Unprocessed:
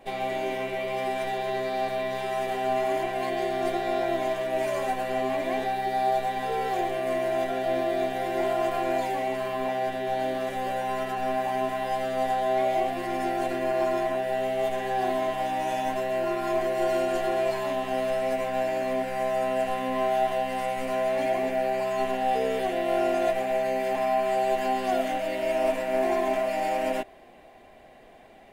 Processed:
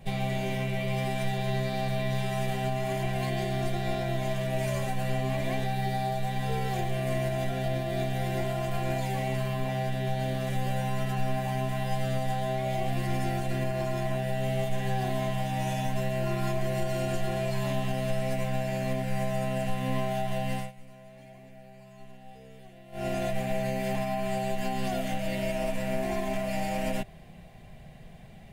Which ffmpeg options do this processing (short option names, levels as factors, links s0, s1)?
-filter_complex "[0:a]asplit=3[s0][s1][s2];[s0]atrim=end=20.72,asetpts=PTS-STARTPTS,afade=t=out:st=20.52:d=0.2:silence=0.0841395[s3];[s1]atrim=start=20.72:end=22.92,asetpts=PTS-STARTPTS,volume=0.0841[s4];[s2]atrim=start=22.92,asetpts=PTS-STARTPTS,afade=t=in:d=0.2:silence=0.0841395[s5];[s3][s4][s5]concat=n=3:v=0:a=1,lowshelf=f=220:t=q:w=3:g=9.5,alimiter=limit=0.112:level=0:latency=1:release=176,equalizer=f=950:t=o:w=2.6:g=-8.5,volume=1.5"